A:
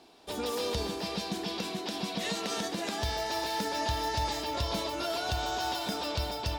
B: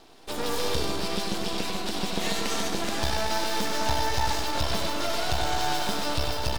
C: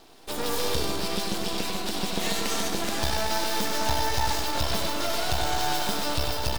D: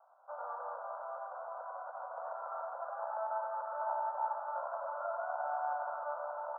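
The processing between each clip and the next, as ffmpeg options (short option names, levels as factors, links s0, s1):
-filter_complex "[0:a]aeval=exprs='max(val(0),0)':c=same,asplit=2[s0][s1];[s1]aecho=0:1:96.21|209.9:0.501|0.316[s2];[s0][s2]amix=inputs=2:normalize=0,volume=2.37"
-af "highshelf=f=11000:g=9"
-af "asuperpass=centerf=890:order=20:qfactor=0.95,volume=0.501"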